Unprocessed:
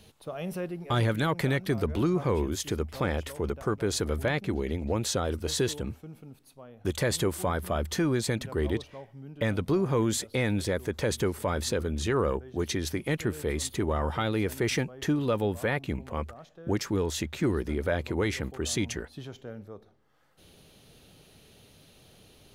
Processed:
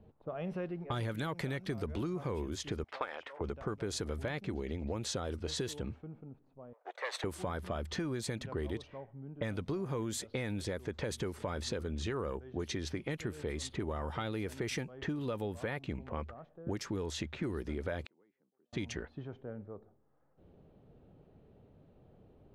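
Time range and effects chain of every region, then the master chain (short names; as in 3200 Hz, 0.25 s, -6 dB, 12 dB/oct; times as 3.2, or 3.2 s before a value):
2.84–3.41 HPF 810 Hz + transient shaper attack +11 dB, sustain +6 dB + high shelf 3600 Hz -9 dB
6.73–7.24 minimum comb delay 0.51 ms + steep high-pass 530 Hz
18.05–18.73 steep high-pass 160 Hz + flipped gate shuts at -36 dBFS, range -39 dB + mismatched tape noise reduction encoder only
whole clip: low-pass opened by the level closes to 730 Hz, open at -23.5 dBFS; compressor, threshold -31 dBFS; gain -2.5 dB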